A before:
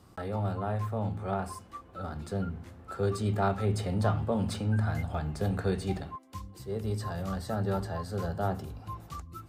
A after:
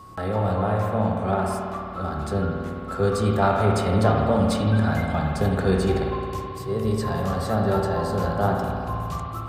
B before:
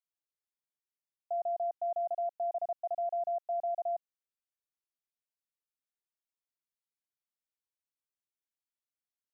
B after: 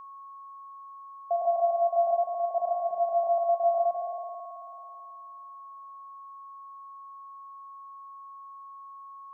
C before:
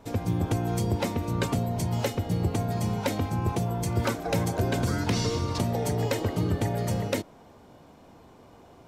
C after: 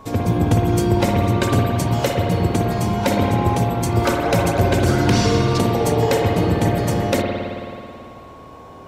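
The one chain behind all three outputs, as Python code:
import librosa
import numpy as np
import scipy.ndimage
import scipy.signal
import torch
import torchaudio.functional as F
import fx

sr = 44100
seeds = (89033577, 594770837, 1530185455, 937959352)

y = fx.rev_spring(x, sr, rt60_s=2.5, pass_ms=(54,), chirp_ms=30, drr_db=0.0)
y = y + 10.0 ** (-50.0 / 20.0) * np.sin(2.0 * np.pi * 1100.0 * np.arange(len(y)) / sr)
y = F.gain(torch.from_numpy(y), 7.5).numpy()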